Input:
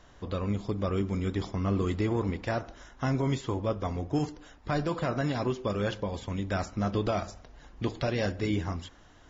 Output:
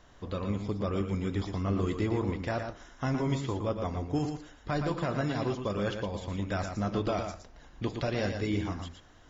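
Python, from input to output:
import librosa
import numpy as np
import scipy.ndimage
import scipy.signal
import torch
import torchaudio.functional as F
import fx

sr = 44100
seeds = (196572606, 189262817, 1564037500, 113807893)

y = x + 10.0 ** (-6.5 / 20.0) * np.pad(x, (int(116 * sr / 1000.0), 0))[:len(x)]
y = y * 10.0 ** (-2.0 / 20.0)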